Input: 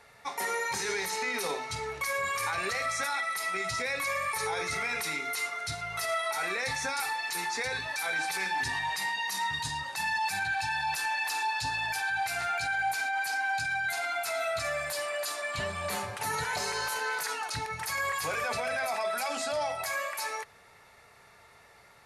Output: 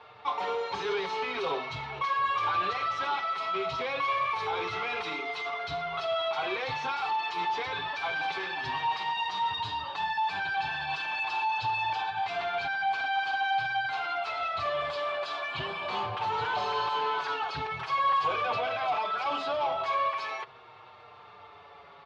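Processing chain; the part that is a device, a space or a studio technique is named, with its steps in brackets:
barber-pole flanger into a guitar amplifier (barber-pole flanger 6.1 ms −0.43 Hz; soft clipping −35.5 dBFS, distortion −11 dB; loudspeaker in its box 90–3,700 Hz, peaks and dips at 220 Hz −7 dB, 390 Hz +4 dB, 760 Hz +4 dB, 1,100 Hz +8 dB, 1,900 Hz −9 dB, 3,200 Hz +6 dB)
level +7.5 dB

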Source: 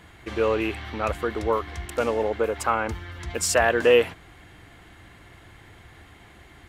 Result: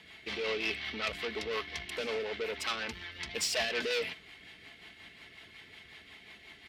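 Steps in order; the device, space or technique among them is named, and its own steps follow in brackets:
overdriven rotary cabinet (tube saturation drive 27 dB, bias 0.45; rotating-speaker cabinet horn 5.5 Hz)
high-pass filter 200 Hz 6 dB per octave
flat-topped bell 3,300 Hz +11 dB
comb filter 4.6 ms, depth 39%
level −3.5 dB

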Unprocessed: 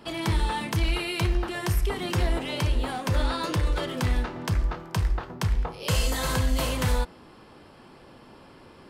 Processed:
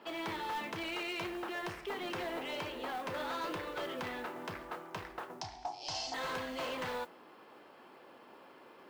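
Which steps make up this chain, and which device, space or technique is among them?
carbon microphone (band-pass filter 370–3,100 Hz; soft clipping −29.5 dBFS, distortion −13 dB; noise that follows the level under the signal 23 dB)
0:05.41–0:06.14: drawn EQ curve 130 Hz 0 dB, 210 Hz −14 dB, 300 Hz 0 dB, 500 Hz −21 dB, 740 Hz +11 dB, 1,200 Hz −12 dB, 2,900 Hz −6 dB, 5,500 Hz +15 dB, 13,000 Hz −24 dB
level −3.5 dB

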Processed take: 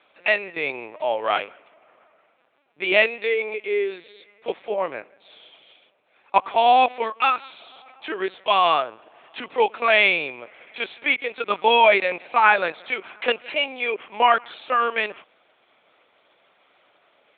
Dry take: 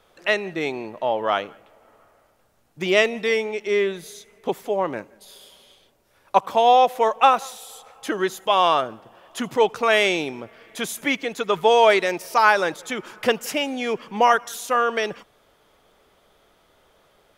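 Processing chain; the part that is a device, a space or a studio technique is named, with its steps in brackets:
0:07.01–0:07.60: parametric band 690 Hz −14.5 dB 0.67 octaves
talking toy (linear-prediction vocoder at 8 kHz pitch kept; high-pass filter 390 Hz 12 dB per octave; parametric band 2,400 Hz +9 dB 0.32 octaves)

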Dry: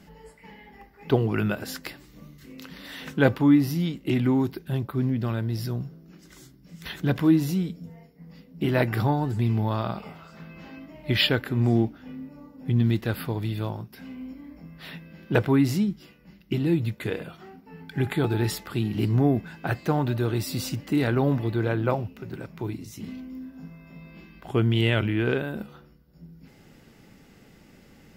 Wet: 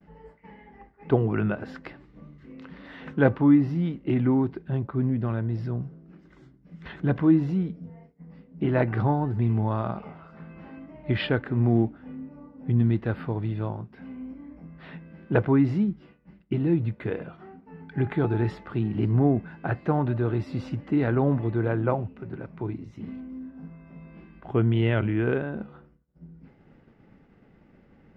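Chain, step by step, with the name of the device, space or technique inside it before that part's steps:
hearing-loss simulation (low-pass filter 1,700 Hz 12 dB per octave; downward expander −49 dBFS)

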